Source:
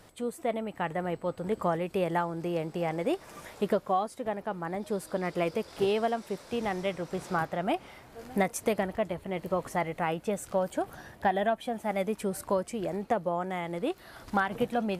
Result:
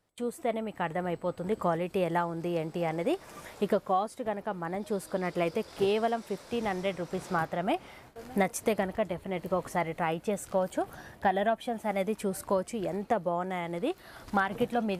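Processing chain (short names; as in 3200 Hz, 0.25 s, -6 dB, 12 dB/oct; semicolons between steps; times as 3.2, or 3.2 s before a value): gate with hold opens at -40 dBFS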